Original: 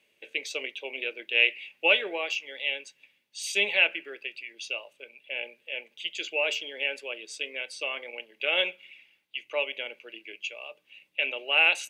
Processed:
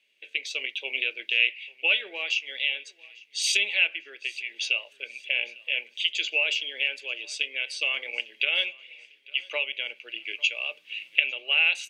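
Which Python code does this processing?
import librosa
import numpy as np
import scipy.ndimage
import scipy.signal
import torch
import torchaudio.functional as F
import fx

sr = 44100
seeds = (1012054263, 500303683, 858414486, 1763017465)

p1 = fx.recorder_agc(x, sr, target_db=-12.5, rise_db_per_s=12.0, max_gain_db=30)
p2 = fx.weighting(p1, sr, curve='D')
p3 = p2 + fx.echo_feedback(p2, sr, ms=850, feedback_pct=44, wet_db=-23.5, dry=0)
y = F.gain(torch.from_numpy(p3), -11.0).numpy()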